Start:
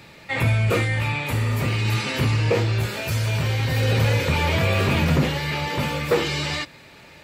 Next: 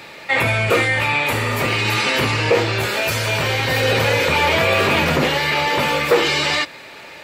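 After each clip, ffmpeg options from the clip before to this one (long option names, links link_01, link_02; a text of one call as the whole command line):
ffmpeg -i in.wav -filter_complex "[0:a]bass=frequency=250:gain=-14,treble=frequency=4000:gain=-3,asplit=2[link_01][link_02];[link_02]alimiter=limit=-19.5dB:level=0:latency=1,volume=2dB[link_03];[link_01][link_03]amix=inputs=2:normalize=0,volume=3dB" out.wav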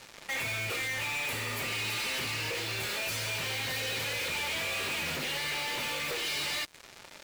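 ffmpeg -i in.wav -filter_complex "[0:a]acrossover=split=2100[link_01][link_02];[link_01]acompressor=threshold=-28dB:ratio=6[link_03];[link_03][link_02]amix=inputs=2:normalize=0,acrusher=bits=4:mix=0:aa=0.5,asoftclip=type=tanh:threshold=-27.5dB,volume=-3.5dB" out.wav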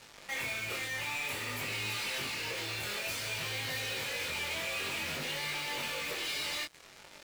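ffmpeg -i in.wav -af "flanger=delay=19.5:depth=5.1:speed=0.55" out.wav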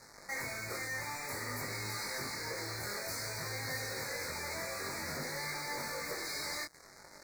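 ffmpeg -i in.wav -af "asuperstop=centerf=3000:order=8:qfactor=1.5" out.wav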